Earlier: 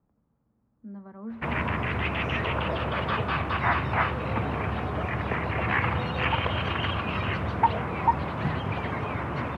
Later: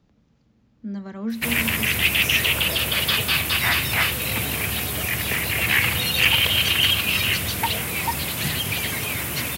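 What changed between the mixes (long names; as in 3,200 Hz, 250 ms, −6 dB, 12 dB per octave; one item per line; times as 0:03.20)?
speech +10.5 dB
master: remove low-pass with resonance 1,100 Hz, resonance Q 1.7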